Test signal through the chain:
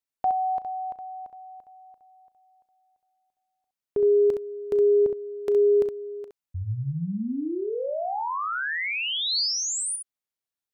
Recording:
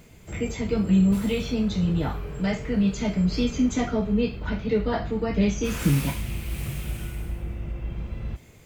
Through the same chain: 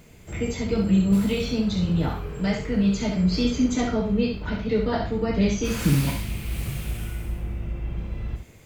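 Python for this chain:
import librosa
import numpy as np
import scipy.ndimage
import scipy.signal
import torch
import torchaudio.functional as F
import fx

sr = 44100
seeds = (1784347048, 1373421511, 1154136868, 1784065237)

p1 = fx.dynamic_eq(x, sr, hz=4500.0, q=3.6, threshold_db=-53.0, ratio=4.0, max_db=5)
y = p1 + fx.room_early_taps(p1, sr, ms=(36, 66), db=(-16.5, -6.0), dry=0)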